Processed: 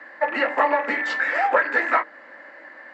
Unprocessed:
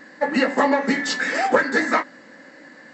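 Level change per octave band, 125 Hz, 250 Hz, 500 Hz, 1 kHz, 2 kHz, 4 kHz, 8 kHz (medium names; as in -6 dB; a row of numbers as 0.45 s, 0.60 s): under -15 dB, -11.5 dB, -2.5 dB, +1.0 dB, +0.5 dB, -7.5 dB, under -15 dB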